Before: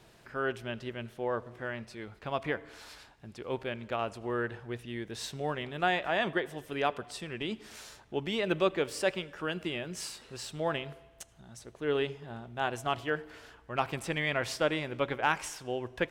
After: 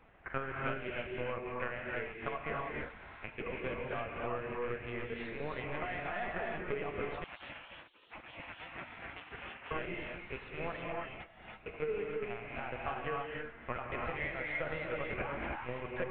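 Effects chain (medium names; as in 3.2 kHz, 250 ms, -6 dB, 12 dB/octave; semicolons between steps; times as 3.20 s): rattle on loud lows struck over -47 dBFS, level -35 dBFS; compression 4:1, threshold -32 dBFS, peak gain reduction 9.5 dB; peak limiter -28.5 dBFS, peak gain reduction 8.5 dB; saturation -32.5 dBFS, distortion -17 dB; transient shaper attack +10 dB, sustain -8 dB; cabinet simulation 390–2600 Hz, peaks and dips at 440 Hz +7 dB, 1.1 kHz +7 dB, 2.1 kHz +7 dB; LPC vocoder at 8 kHz pitch kept; gated-style reverb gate 350 ms rising, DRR -2 dB; 7.24–9.71 s: spectral gate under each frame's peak -15 dB weak; trim -3 dB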